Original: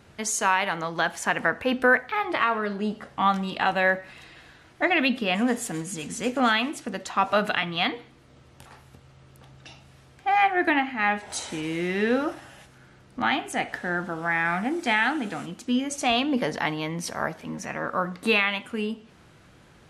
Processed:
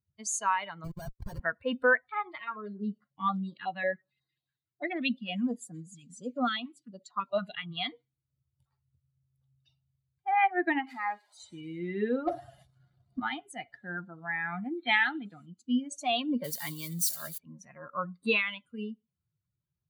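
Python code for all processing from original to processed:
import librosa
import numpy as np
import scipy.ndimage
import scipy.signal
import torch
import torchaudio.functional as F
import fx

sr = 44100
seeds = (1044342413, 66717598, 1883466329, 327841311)

y = fx.chain(x, sr, fx.high_shelf(hz=3500.0, db=-3.0),
    fx.schmitt(flips_db=-28.5),
    fx.resample_bad(factor=6, down='filtered', up='hold'), at=(0.84, 1.4))
y = fx.chain(y, sr, fx.highpass(hz=110.0, slope=12),
    fx.high_shelf(hz=8900.0, db=-6.5),
    fx.filter_held_notch(hz=11.0, low_hz=460.0, high_hz=2700.0), at=(2.29, 7.71))
y = fx.chain(y, sr, fx.crossing_spikes(level_db=-19.0),
    fx.bandpass_q(hz=780.0, q=0.68),
    fx.pre_swell(db_per_s=48.0), at=(10.87, 11.4))
y = fx.chain(y, sr, fx.peak_eq(hz=700.0, db=12.0, octaves=0.23),
    fx.notch(hz=2600.0, q=16.0),
    fx.leveller(passes=3), at=(12.27, 13.2))
y = fx.chain(y, sr, fx.brickwall_lowpass(high_hz=4300.0),
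    fx.high_shelf(hz=2300.0, db=7.5), at=(14.77, 15.25))
y = fx.chain(y, sr, fx.crossing_spikes(level_db=-17.5),
    fx.peak_eq(hz=870.0, db=-3.5, octaves=0.56), at=(16.44, 17.38))
y = fx.bin_expand(y, sr, power=2.0)
y = fx.notch(y, sr, hz=5200.0, q=9.1)
y = y * librosa.db_to_amplitude(-2.0)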